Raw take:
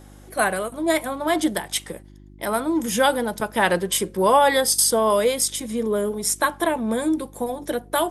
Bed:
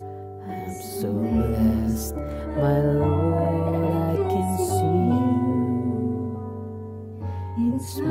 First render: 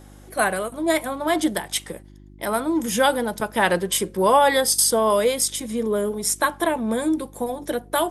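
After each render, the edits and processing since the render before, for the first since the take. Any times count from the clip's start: nothing audible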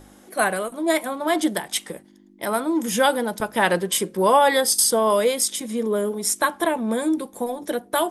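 de-hum 50 Hz, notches 3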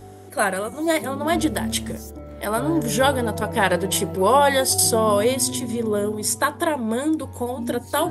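add bed -7.5 dB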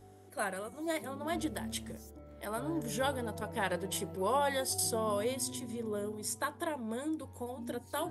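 gain -14.5 dB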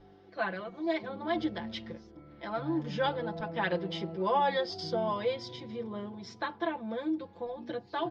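steep low-pass 5000 Hz 48 dB/oct; comb 5.9 ms, depth 89%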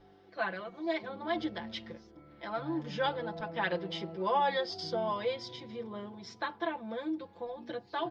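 low shelf 440 Hz -5 dB

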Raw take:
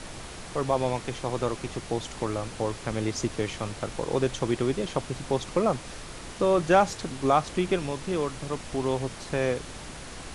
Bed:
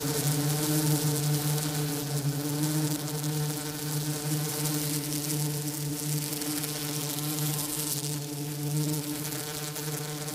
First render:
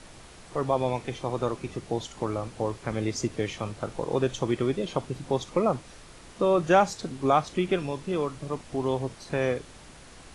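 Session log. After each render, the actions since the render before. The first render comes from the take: noise print and reduce 8 dB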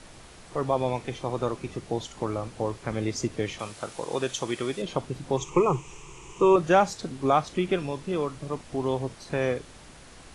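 3.59–4.82 tilt +2.5 dB/oct; 5.37–6.56 ripple EQ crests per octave 0.72, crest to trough 16 dB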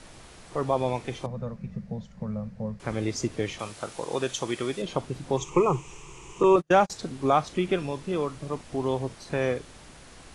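1.26–2.8 EQ curve 120 Hz 0 dB, 210 Hz +10 dB, 300 Hz -27 dB, 530 Hz -5 dB, 760 Hz -14 dB, 1300 Hz -14 dB, 1800 Hz -9 dB, 3200 Hz -20 dB, 4900 Hz -16 dB, 9200 Hz -25 dB; 6.43–6.9 gate -25 dBFS, range -39 dB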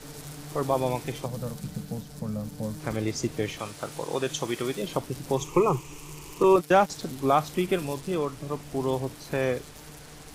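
add bed -14.5 dB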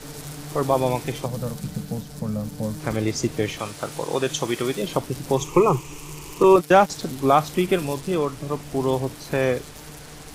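gain +5 dB

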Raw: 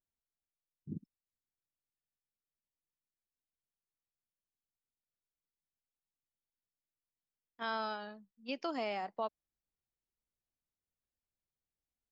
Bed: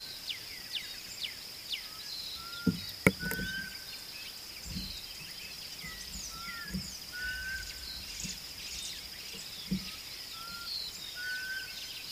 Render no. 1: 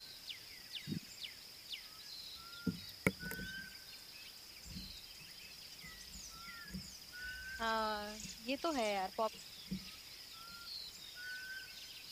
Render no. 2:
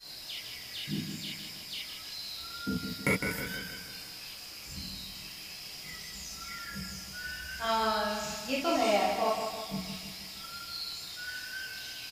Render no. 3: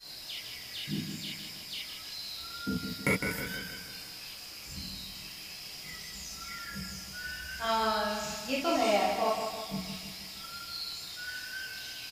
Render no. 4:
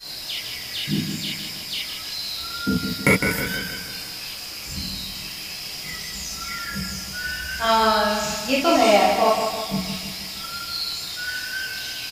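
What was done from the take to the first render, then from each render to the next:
add bed -9.5 dB
on a send: feedback echo 0.158 s, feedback 53%, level -6.5 dB; on the sum: non-linear reverb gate 0.1 s flat, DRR -8 dB
nothing audible
gain +11 dB

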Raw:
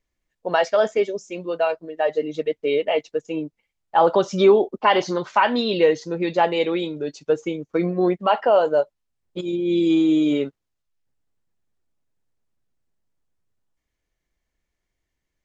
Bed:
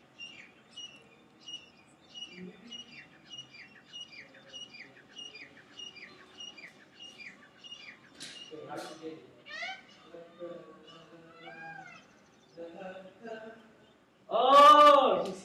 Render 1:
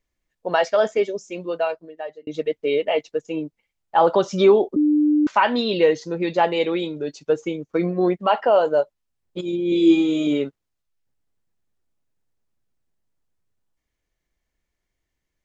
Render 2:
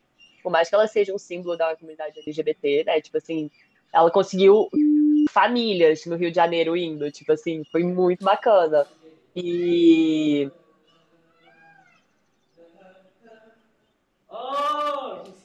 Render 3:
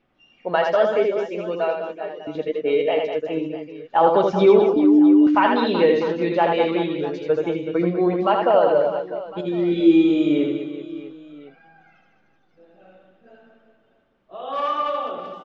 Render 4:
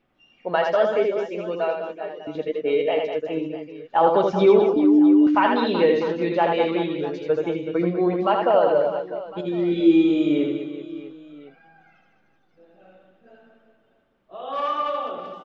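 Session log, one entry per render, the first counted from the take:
1.5–2.27 fade out linear; 4.76–5.27 bleep 299 Hz -14 dBFS; 9.7–10.27 flutter echo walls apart 3.6 m, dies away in 0.38 s
add bed -7 dB
air absorption 200 m; reverse bouncing-ball echo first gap 80 ms, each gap 1.5×, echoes 5
gain -1.5 dB

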